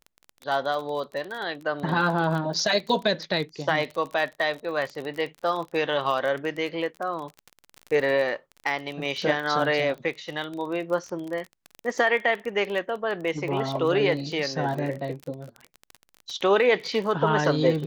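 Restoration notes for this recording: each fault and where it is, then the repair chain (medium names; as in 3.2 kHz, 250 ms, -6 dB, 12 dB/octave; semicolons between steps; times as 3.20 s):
crackle 30 per s -30 dBFS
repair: de-click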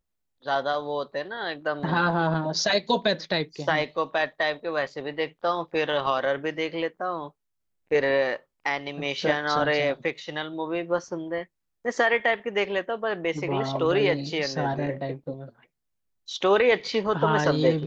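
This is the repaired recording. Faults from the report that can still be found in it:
nothing left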